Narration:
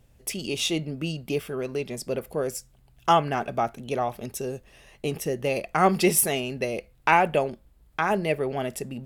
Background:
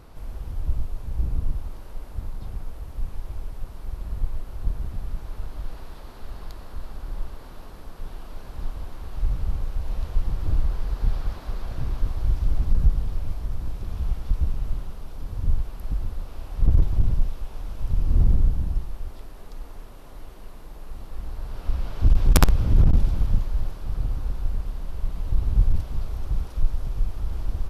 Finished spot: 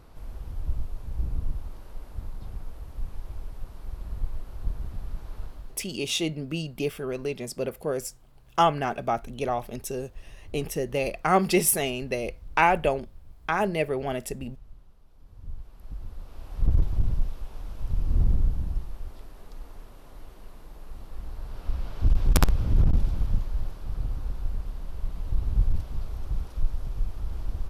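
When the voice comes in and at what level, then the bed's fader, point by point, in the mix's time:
5.50 s, −1.0 dB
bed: 0:05.44 −4 dB
0:06.01 −21 dB
0:15.07 −21 dB
0:16.56 −4 dB

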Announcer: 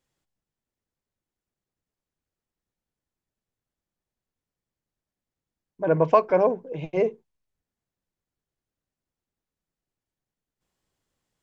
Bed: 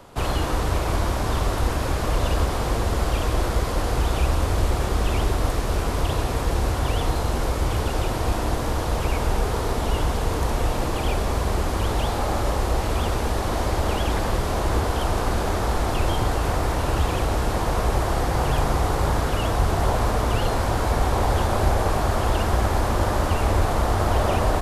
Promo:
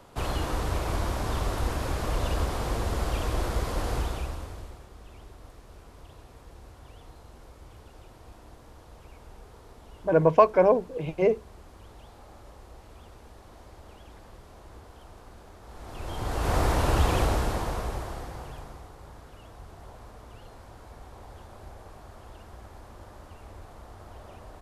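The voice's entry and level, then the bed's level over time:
4.25 s, +0.5 dB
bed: 0:03.96 −6 dB
0:04.88 −26 dB
0:15.61 −26 dB
0:16.57 −1 dB
0:17.22 −1 dB
0:18.93 −25.5 dB

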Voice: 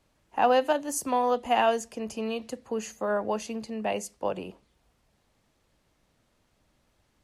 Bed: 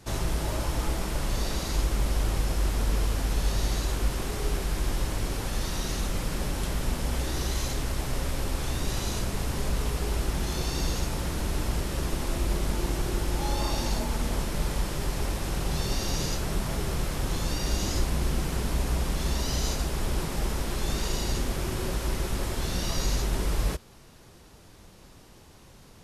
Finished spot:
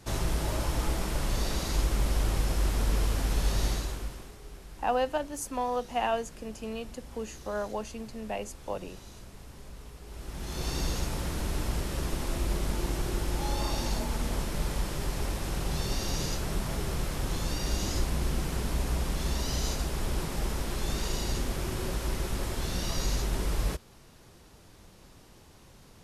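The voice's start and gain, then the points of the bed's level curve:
4.45 s, −5.5 dB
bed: 0:03.68 −1 dB
0:04.39 −18 dB
0:10.03 −18 dB
0:10.68 −2.5 dB

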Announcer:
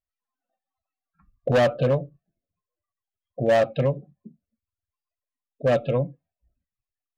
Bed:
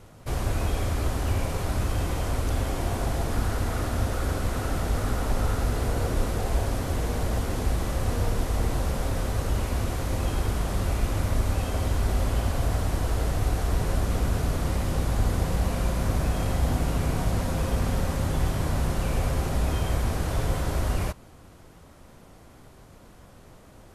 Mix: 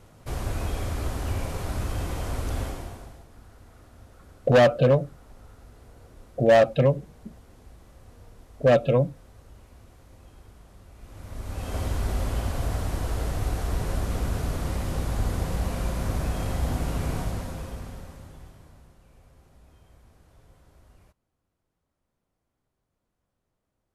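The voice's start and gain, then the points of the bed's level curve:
3.00 s, +2.5 dB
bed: 0:02.64 −3 dB
0:03.28 −24 dB
0:10.92 −24 dB
0:11.76 −2.5 dB
0:17.16 −2.5 dB
0:19.00 −30 dB

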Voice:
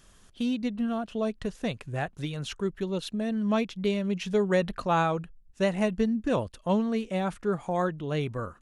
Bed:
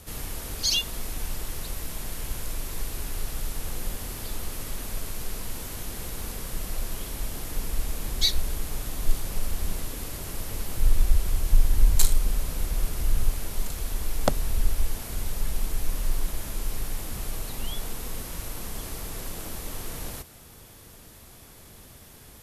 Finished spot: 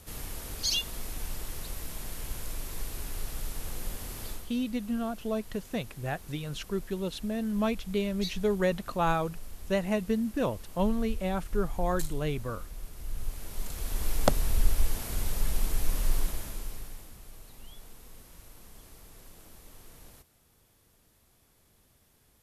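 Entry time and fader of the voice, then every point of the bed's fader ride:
4.10 s, −2.5 dB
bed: 0:04.30 −4.5 dB
0:04.52 −15 dB
0:12.93 −15 dB
0:14.08 −0.5 dB
0:16.19 −0.5 dB
0:17.20 −16.5 dB

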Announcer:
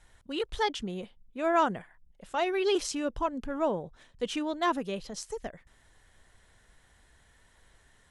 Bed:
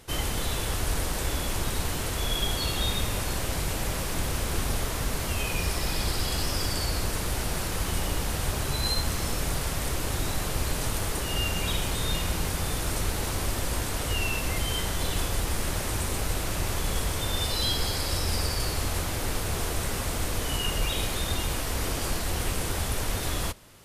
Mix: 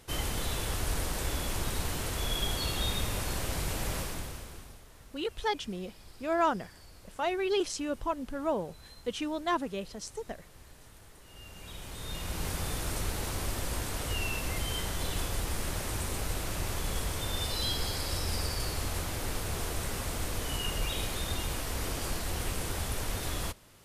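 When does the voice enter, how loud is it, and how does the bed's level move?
4.85 s, −2.0 dB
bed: 0:03.99 −4 dB
0:04.85 −25.5 dB
0:11.19 −25.5 dB
0:12.48 −5 dB

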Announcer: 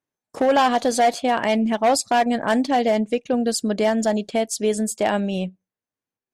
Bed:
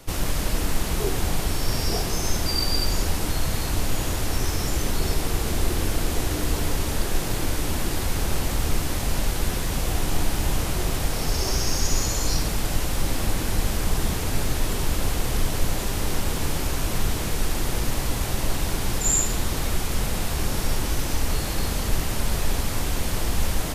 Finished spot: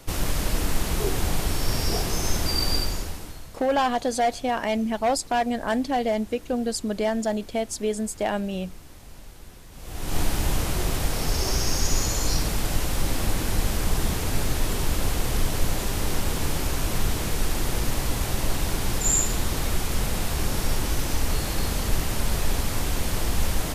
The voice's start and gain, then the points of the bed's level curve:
3.20 s, −5.0 dB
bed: 0:02.75 −0.5 dB
0:03.58 −20.5 dB
0:09.71 −20.5 dB
0:10.18 −0.5 dB

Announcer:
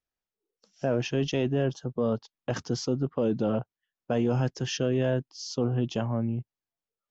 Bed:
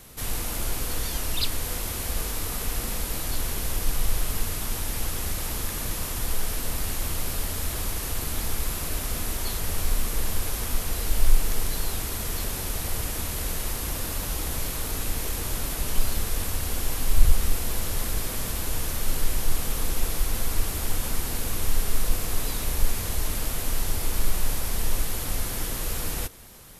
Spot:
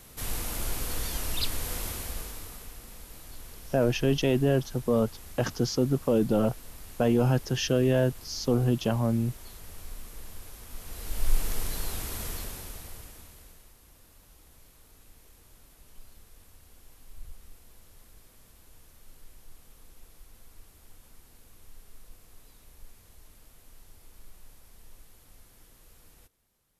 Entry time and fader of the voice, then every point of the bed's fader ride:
2.90 s, +2.5 dB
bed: 0:01.86 −3.5 dB
0:02.78 −17 dB
0:10.66 −17 dB
0:11.38 −5 dB
0:12.25 −5 dB
0:13.74 −27 dB

